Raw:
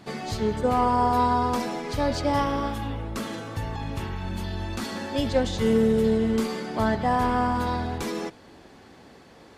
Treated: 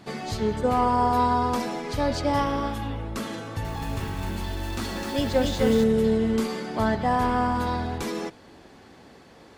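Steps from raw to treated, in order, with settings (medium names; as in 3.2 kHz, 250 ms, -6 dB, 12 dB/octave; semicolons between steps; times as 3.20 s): 3.39–5.84 s: bit-crushed delay 256 ms, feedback 35%, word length 7-bit, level -3 dB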